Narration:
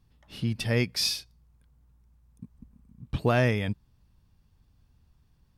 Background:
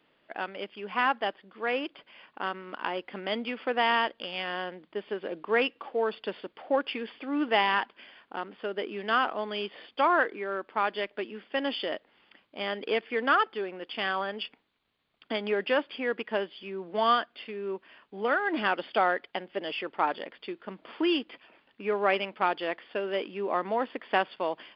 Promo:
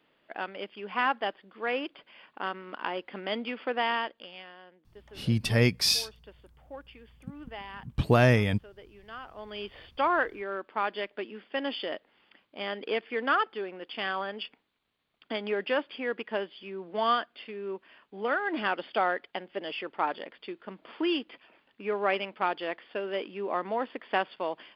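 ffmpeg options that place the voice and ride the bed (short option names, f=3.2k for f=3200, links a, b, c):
-filter_complex "[0:a]adelay=4850,volume=2.5dB[a];[1:a]volume=14.5dB,afade=t=out:st=3.62:d=0.93:silence=0.149624,afade=t=in:st=9.28:d=0.48:silence=0.16788[b];[a][b]amix=inputs=2:normalize=0"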